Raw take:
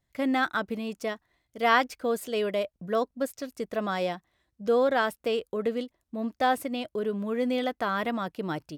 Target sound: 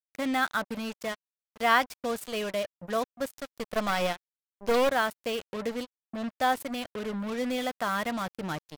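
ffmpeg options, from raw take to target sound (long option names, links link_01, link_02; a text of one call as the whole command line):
ffmpeg -i in.wav -filter_complex "[0:a]equalizer=frequency=370:width_type=o:width=0.87:gain=-8,asettb=1/sr,asplit=3[link_01][link_02][link_03];[link_01]atrim=end=3.344[link_04];[link_02]atrim=start=3.34:end=4.91,asetpts=PTS-STARTPTS,afade=type=in:duration=0.004:curve=qsin,afade=type=out:start_time=1.566:duration=0.004:curve=qsin,aeval=exprs='0.133*(cos(1*acos(clip(val(0)/0.133,-1,1)))-cos(1*PI/2))+0.0299*(cos(2*acos(clip(val(0)/0.133,-1,1)))-cos(2*PI/2))+0.0422*(cos(5*acos(clip(val(0)/0.133,-1,1)))-cos(5*PI/2))+0.0106*(cos(6*acos(clip(val(0)/0.133,-1,1)))-cos(6*PI/2))+0.0335*(cos(7*acos(clip(val(0)/0.133,-1,1)))-cos(7*PI/2))':channel_layout=same[link_05];[link_03]atrim=start=4.906[link_06];[link_04][link_05]acrossfade=duration=0.004:curve1=hsin:curve2=qsin[link_07];[link_07][link_06]acrossfade=duration=0.004:curve1=qsin:curve2=hsin,acrusher=bits=5:mix=0:aa=0.5" out.wav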